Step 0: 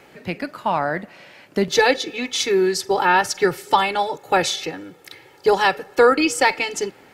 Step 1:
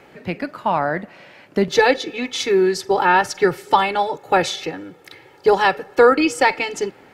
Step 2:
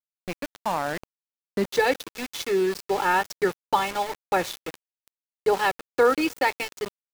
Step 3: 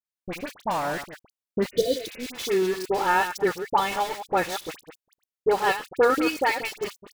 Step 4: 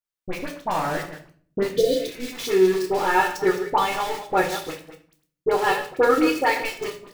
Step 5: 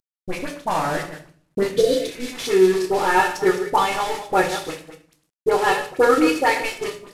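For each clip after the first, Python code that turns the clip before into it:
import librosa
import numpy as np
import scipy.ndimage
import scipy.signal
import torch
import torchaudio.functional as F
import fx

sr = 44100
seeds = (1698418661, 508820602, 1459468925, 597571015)

y1 = fx.high_shelf(x, sr, hz=3800.0, db=-8.0)
y1 = F.gain(torch.from_numpy(y1), 2.0).numpy()
y2 = np.where(np.abs(y1) >= 10.0 ** (-22.5 / 20.0), y1, 0.0)
y2 = F.gain(torch.from_numpy(y2), -7.0).numpy()
y3 = fx.reverse_delay(y2, sr, ms=114, wet_db=-10.0)
y3 = fx.dispersion(y3, sr, late='highs', ms=55.0, hz=1700.0)
y3 = fx.spec_repair(y3, sr, seeds[0], start_s=1.75, length_s=0.51, low_hz=710.0, high_hz=2900.0, source='both')
y4 = fx.room_shoebox(y3, sr, seeds[1], volume_m3=49.0, walls='mixed', distance_m=0.48)
y5 = fx.cvsd(y4, sr, bps=64000)
y5 = F.gain(torch.from_numpy(y5), 2.5).numpy()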